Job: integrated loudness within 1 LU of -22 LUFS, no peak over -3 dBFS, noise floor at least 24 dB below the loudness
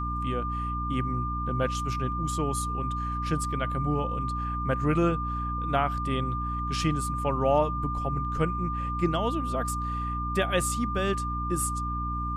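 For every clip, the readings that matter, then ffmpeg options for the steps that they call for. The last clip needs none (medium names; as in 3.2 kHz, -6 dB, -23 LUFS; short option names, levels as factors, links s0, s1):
hum 60 Hz; highest harmonic 300 Hz; hum level -30 dBFS; steady tone 1.2 kHz; tone level -31 dBFS; loudness -28.5 LUFS; peak level -11.5 dBFS; loudness target -22.0 LUFS
-> -af "bandreject=f=60:t=h:w=4,bandreject=f=120:t=h:w=4,bandreject=f=180:t=h:w=4,bandreject=f=240:t=h:w=4,bandreject=f=300:t=h:w=4"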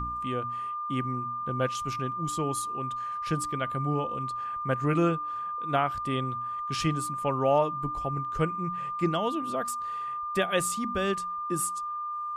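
hum not found; steady tone 1.2 kHz; tone level -31 dBFS
-> -af "bandreject=f=1200:w=30"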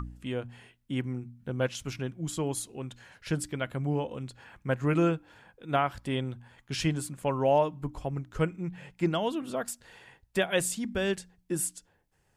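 steady tone not found; loudness -31.5 LUFS; peak level -14.0 dBFS; loudness target -22.0 LUFS
-> -af "volume=2.99"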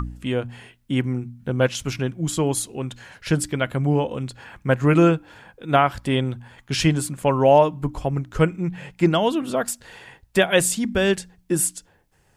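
loudness -22.0 LUFS; peak level -4.5 dBFS; noise floor -61 dBFS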